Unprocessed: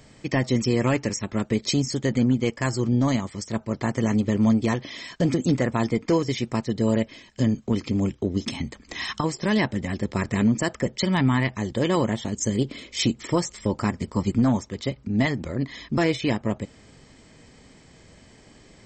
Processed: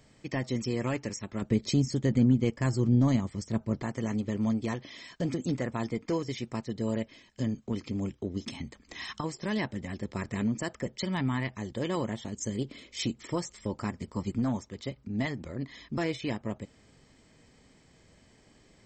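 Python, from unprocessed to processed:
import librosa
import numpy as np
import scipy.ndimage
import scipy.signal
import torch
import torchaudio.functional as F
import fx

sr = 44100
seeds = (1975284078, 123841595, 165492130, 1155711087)

y = fx.low_shelf(x, sr, hz=370.0, db=9.5, at=(1.42, 3.83))
y = y * librosa.db_to_amplitude(-9.0)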